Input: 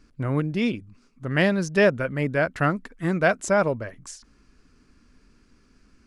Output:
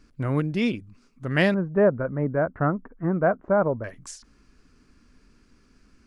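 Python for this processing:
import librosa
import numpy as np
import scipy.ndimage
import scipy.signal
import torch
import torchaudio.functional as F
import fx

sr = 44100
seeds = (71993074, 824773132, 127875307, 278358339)

y = fx.lowpass(x, sr, hz=1300.0, slope=24, at=(1.54, 3.84))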